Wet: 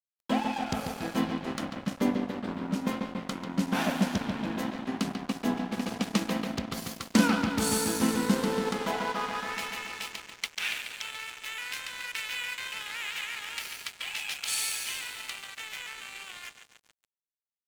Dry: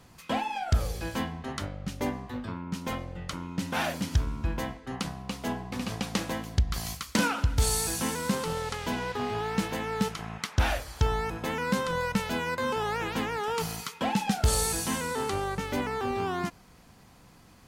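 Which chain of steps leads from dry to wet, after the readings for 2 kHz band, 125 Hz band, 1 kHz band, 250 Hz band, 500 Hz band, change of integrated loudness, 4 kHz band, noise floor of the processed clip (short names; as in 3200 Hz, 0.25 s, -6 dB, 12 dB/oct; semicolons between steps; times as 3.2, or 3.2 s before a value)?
0.0 dB, -7.0 dB, -3.5 dB, +3.0 dB, -3.0 dB, -1.0 dB, +1.5 dB, under -85 dBFS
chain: high-pass sweep 220 Hz -> 2400 Hz, 8.29–9.65; analogue delay 0.141 s, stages 4096, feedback 79%, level -6 dB; crossover distortion -37 dBFS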